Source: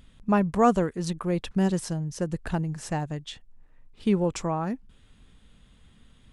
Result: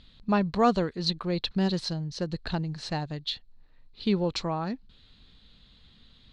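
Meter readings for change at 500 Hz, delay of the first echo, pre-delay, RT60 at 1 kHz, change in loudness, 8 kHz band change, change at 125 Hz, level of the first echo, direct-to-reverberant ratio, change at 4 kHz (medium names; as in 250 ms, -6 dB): -2.5 dB, no echo, no reverb, no reverb, -2.0 dB, -7.0 dB, -2.5 dB, no echo, no reverb, +9.5 dB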